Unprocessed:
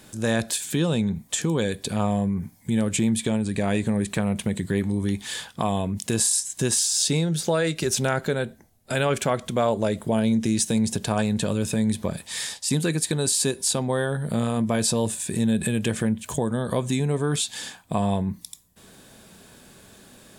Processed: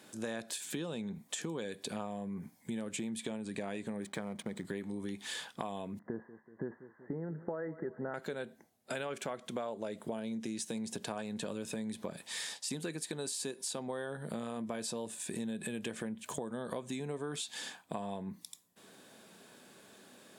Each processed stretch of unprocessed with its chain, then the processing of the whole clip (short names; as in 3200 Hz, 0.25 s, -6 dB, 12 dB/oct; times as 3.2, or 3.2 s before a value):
4.02–4.65 backlash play -37.5 dBFS + Butterworth band-stop 2700 Hz, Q 7.4
5.99–8.14 de-esser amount 100% + Chebyshev low-pass 2000 Hz, order 10 + feedback echo 0.189 s, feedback 60%, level -20 dB
whole clip: HPF 230 Hz 12 dB/oct; high shelf 5400 Hz -5.5 dB; compressor, threshold -30 dBFS; gain -5.5 dB